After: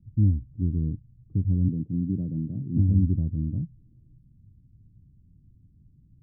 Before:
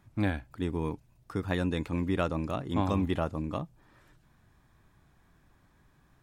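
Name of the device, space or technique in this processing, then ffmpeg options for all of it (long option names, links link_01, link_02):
the neighbour's flat through the wall: -filter_complex "[0:a]asettb=1/sr,asplit=3[link_01][link_02][link_03];[link_01]atrim=end=1.684[link_04];[link_02]atrim=start=1.68:end=2.77,asetpts=PTS-STARTPTS,afade=type=in:duration=0.004:curve=qsin,afade=type=out:start_time=1.086:duration=0.004:curve=qsin,highpass=frequency=120:width=0.5412,highpass=frequency=120:width=1.3066[link_05];[link_03]atrim=start=2.766[link_06];[link_04][link_05]acrossfade=duration=0.004:curve1=hsin:curve2=qsin[link_07];[link_07][link_06]acrossfade=duration=0.004:curve1=qsin:curve2=hsin,lowpass=frequency=240:width=0.5412,lowpass=frequency=240:width=1.3066,equalizer=frequency=100:width_type=o:width=0.81:gain=7,volume=6dB"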